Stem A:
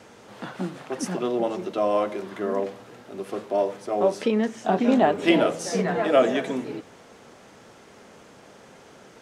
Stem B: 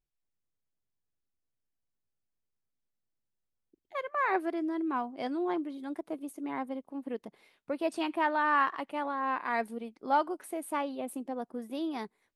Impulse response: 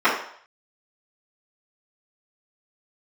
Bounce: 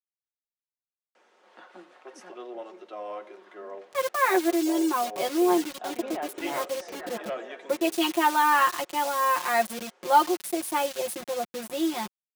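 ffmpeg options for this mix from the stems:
-filter_complex "[0:a]highpass=f=270:w=0.5412,highpass=f=270:w=1.3066,asplit=2[s0][s1];[s1]highpass=f=720:p=1,volume=3.98,asoftclip=type=tanh:threshold=0.596[s2];[s0][s2]amix=inputs=2:normalize=0,lowpass=f=2600:p=1,volume=0.501,adelay=1150,volume=0.133[s3];[1:a]aecho=1:1:5.8:0.88,acrusher=bits=6:mix=0:aa=0.000001,adynamicequalizer=threshold=0.00891:dfrequency=2400:dqfactor=0.7:tfrequency=2400:tqfactor=0.7:attack=5:release=100:ratio=0.375:range=3:mode=boostabove:tftype=highshelf,volume=1.41[s4];[s3][s4]amix=inputs=2:normalize=0,highpass=f=150:p=1,aecho=1:1:5.5:0.4"

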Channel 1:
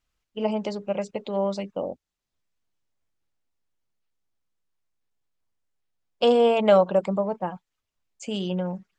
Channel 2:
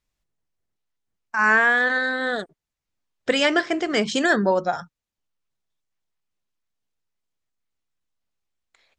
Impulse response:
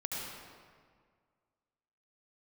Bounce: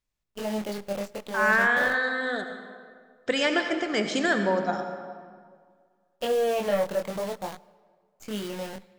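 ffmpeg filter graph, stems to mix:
-filter_complex "[0:a]acrusher=bits=6:dc=4:mix=0:aa=0.000001,asoftclip=type=tanh:threshold=0.158,flanger=delay=19:depth=6.2:speed=0.52,volume=0.841,asplit=2[s0][s1];[s1]volume=0.0668[s2];[1:a]volume=0.398,asplit=2[s3][s4];[s4]volume=0.562[s5];[2:a]atrim=start_sample=2205[s6];[s2][s5]amix=inputs=2:normalize=0[s7];[s7][s6]afir=irnorm=-1:irlink=0[s8];[s0][s3][s8]amix=inputs=3:normalize=0"

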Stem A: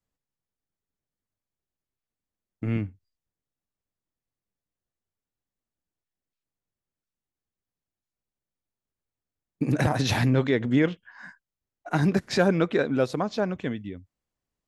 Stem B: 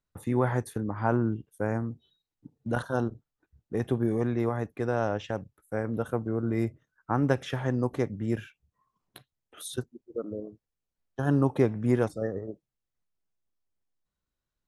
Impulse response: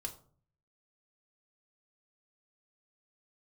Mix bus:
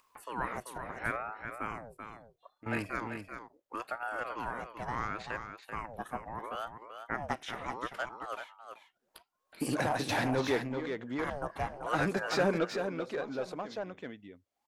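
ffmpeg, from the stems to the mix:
-filter_complex "[0:a]highshelf=f=6600:g=7,asplit=2[s0][s1];[s1]highpass=f=720:p=1,volume=7.08,asoftclip=type=tanh:threshold=0.376[s2];[s0][s2]amix=inputs=2:normalize=0,lowpass=f=6400:p=1,volume=0.501,tiltshelf=f=1200:g=6,volume=0.266,asplit=3[s3][s4][s5];[s4]volume=0.188[s6];[s5]volume=0.531[s7];[1:a]acrossover=split=350|3000[s8][s9][s10];[s8]acompressor=threshold=0.00355:ratio=2[s11];[s11][s9][s10]amix=inputs=3:normalize=0,aeval=exprs='val(0)*sin(2*PI*660*n/s+660*0.65/0.74*sin(2*PI*0.74*n/s))':c=same,volume=0.891,asplit=3[s12][s13][s14];[s13]volume=0.398[s15];[s14]apad=whole_len=647175[s16];[s3][s16]sidechaingate=range=0.126:threshold=0.00126:ratio=16:detection=peak[s17];[2:a]atrim=start_sample=2205[s18];[s6][s18]afir=irnorm=-1:irlink=0[s19];[s7][s15]amix=inputs=2:normalize=0,aecho=0:1:386:1[s20];[s17][s12][s19][s20]amix=inputs=4:normalize=0,lowshelf=f=430:g=-7.5,acompressor=mode=upward:threshold=0.002:ratio=2.5"

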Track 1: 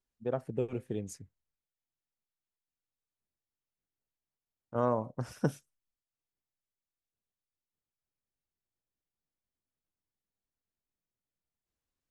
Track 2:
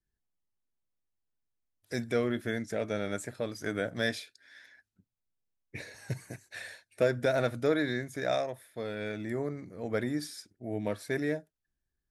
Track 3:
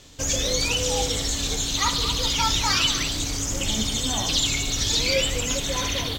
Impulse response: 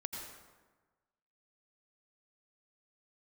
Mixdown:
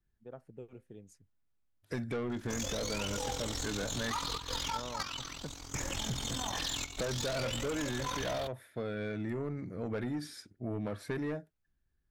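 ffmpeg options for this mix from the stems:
-filter_complex "[0:a]volume=0.178[s0];[1:a]bass=f=250:g=5,treble=f=4000:g=-8,volume=1.33,asplit=2[s1][s2];[2:a]equalizer=f=990:t=o:w=1.1:g=8.5,tremolo=f=43:d=0.788,adelay=2300,volume=0.631[s3];[s2]apad=whole_len=374105[s4];[s3][s4]sidechaingate=range=0.224:threshold=0.00178:ratio=16:detection=peak[s5];[s1][s5]amix=inputs=2:normalize=0,asoftclip=type=tanh:threshold=0.0596,acompressor=threshold=0.0224:ratio=6,volume=1[s6];[s0][s6]amix=inputs=2:normalize=0,equalizer=f=1400:t=o:w=0.21:g=3"

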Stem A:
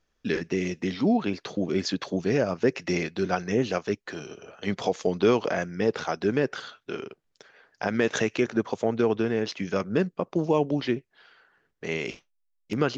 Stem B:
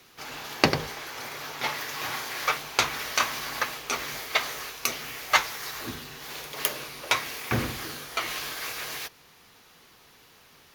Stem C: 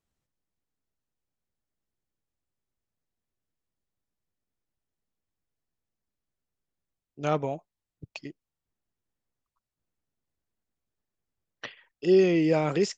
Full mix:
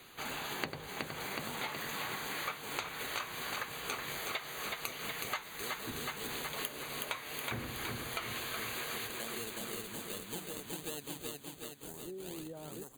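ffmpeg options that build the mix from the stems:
-filter_complex "[0:a]acrusher=samples=37:mix=1:aa=0.000001:lfo=1:lforange=37:lforate=1.3,aexciter=amount=3:drive=7.8:freq=2700,volume=0.168,asplit=2[s0][s1];[s1]volume=0.531[s2];[1:a]volume=1.06,asplit=2[s3][s4];[s4]volume=0.355[s5];[2:a]volume=0.2[s6];[s0][s6]amix=inputs=2:normalize=0,asuperstop=centerf=3100:order=4:qfactor=0.73,acompressor=threshold=0.00631:ratio=6,volume=1[s7];[s2][s5]amix=inputs=2:normalize=0,aecho=0:1:370|740|1110|1480|1850|2220|2590|2960|3330:1|0.58|0.336|0.195|0.113|0.0656|0.0381|0.0221|0.0128[s8];[s3][s7][s8]amix=inputs=3:normalize=0,asuperstop=centerf=5400:order=8:qfactor=3.5,acompressor=threshold=0.0158:ratio=8"

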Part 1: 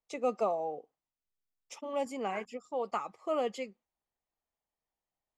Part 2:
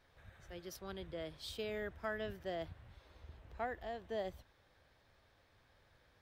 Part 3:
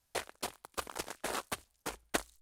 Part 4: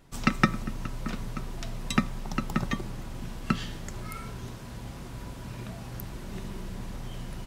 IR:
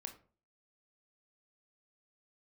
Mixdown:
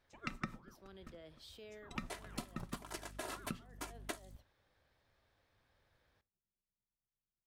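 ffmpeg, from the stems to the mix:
-filter_complex "[0:a]aeval=exprs='val(0)*sin(2*PI*530*n/s+530*0.75/4.4*sin(2*PI*4.4*n/s))':c=same,volume=0.141,asplit=2[s0][s1];[1:a]alimiter=level_in=5.96:limit=0.0631:level=0:latency=1,volume=0.168,volume=0.376,asplit=2[s2][s3];[s3]volume=0.501[s4];[2:a]aecho=1:1:3:0.89,flanger=delay=6.6:depth=7.8:regen=-50:speed=1.1:shape=triangular,aeval=exprs='val(0)+0.00251*(sin(2*PI*50*n/s)+sin(2*PI*2*50*n/s)/2+sin(2*PI*3*50*n/s)/3+sin(2*PI*4*50*n/s)/4+sin(2*PI*5*50*n/s)/5)':c=same,adelay=1950,volume=1.19[s5];[3:a]agate=range=0.00112:threshold=0.0447:ratio=16:detection=peak,acrossover=split=1300[s6][s7];[s6]aeval=exprs='val(0)*(1-0.5/2+0.5/2*cos(2*PI*8.8*n/s))':c=same[s8];[s7]aeval=exprs='val(0)*(1-0.5/2-0.5/2*cos(2*PI*8.8*n/s))':c=same[s9];[s8][s9]amix=inputs=2:normalize=0,volume=0.596,asplit=2[s10][s11];[s11]volume=0.531[s12];[s1]apad=whole_len=273904[s13];[s2][s13]sidechaincompress=threshold=0.00158:ratio=8:attack=16:release=465[s14];[4:a]atrim=start_sample=2205[s15];[s4][s12]amix=inputs=2:normalize=0[s16];[s16][s15]afir=irnorm=-1:irlink=0[s17];[s0][s14][s5][s10][s17]amix=inputs=5:normalize=0,acompressor=threshold=0.00708:ratio=3"

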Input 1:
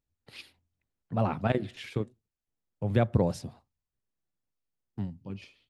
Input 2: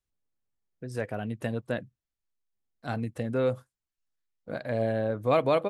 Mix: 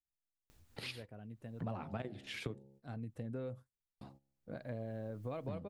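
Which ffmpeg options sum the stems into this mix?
-filter_complex "[0:a]bandreject=f=67.85:t=h:w=4,bandreject=f=135.7:t=h:w=4,bandreject=f=203.55:t=h:w=4,bandreject=f=271.4:t=h:w=4,bandreject=f=339.25:t=h:w=4,bandreject=f=407.1:t=h:w=4,bandreject=f=474.95:t=h:w=4,bandreject=f=542.8:t=h:w=4,bandreject=f=610.65:t=h:w=4,bandreject=f=678.5:t=h:w=4,bandreject=f=746.35:t=h:w=4,bandreject=f=814.2:t=h:w=4,bandreject=f=882.05:t=h:w=4,agate=range=0.178:threshold=0.00126:ratio=16:detection=peak,acompressor=mode=upward:threshold=0.01:ratio=2.5,adelay=500,volume=1.12,asplit=3[s0][s1][s2];[s0]atrim=end=3.22,asetpts=PTS-STARTPTS,afade=t=out:st=3.216:d=0.004:c=hsin[s3];[s1]atrim=start=3.22:end=4.01,asetpts=PTS-STARTPTS,volume=0[s4];[s2]atrim=start=4.01,asetpts=PTS-STARTPTS,afade=t=in:d=0.004:c=hsin[s5];[s3][s4][s5]concat=n=3:v=0:a=1[s6];[1:a]lowshelf=f=370:g=10,volume=0.188,afade=t=in:st=2.62:d=0.76:silence=0.354813[s7];[s6][s7]amix=inputs=2:normalize=0,acompressor=threshold=0.0126:ratio=10"

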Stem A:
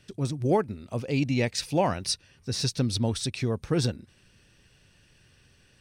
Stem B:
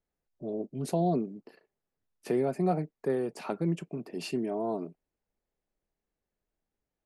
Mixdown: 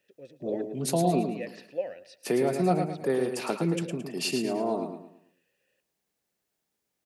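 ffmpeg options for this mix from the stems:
-filter_complex "[0:a]asplit=3[s0][s1][s2];[s0]bandpass=f=530:t=q:w=8,volume=1[s3];[s1]bandpass=f=1840:t=q:w=8,volume=0.501[s4];[s2]bandpass=f=2480:t=q:w=8,volume=0.355[s5];[s3][s4][s5]amix=inputs=3:normalize=0,volume=0.794,asplit=2[s6][s7];[s7]volume=0.141[s8];[1:a]highshelf=f=2100:g=10,volume=1.26,asplit=2[s9][s10];[s10]volume=0.473[s11];[s8][s11]amix=inputs=2:normalize=0,aecho=0:1:110|220|330|440|550:1|0.37|0.137|0.0507|0.0187[s12];[s6][s9][s12]amix=inputs=3:normalize=0,highpass=110"

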